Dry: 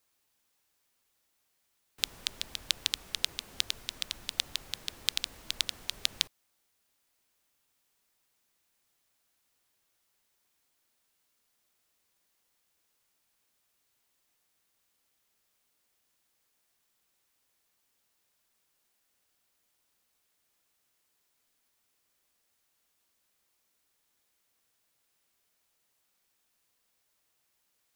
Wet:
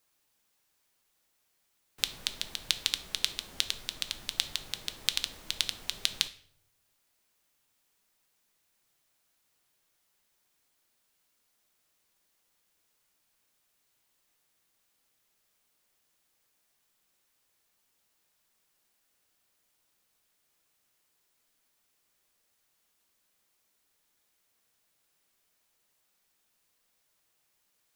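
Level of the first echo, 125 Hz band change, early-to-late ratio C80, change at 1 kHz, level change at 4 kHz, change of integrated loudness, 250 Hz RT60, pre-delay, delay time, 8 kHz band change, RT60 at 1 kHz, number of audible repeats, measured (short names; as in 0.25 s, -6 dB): none, +1.5 dB, 19.0 dB, +1.5 dB, +1.5 dB, +1.5 dB, 0.80 s, 5 ms, none, +1.5 dB, 0.55 s, none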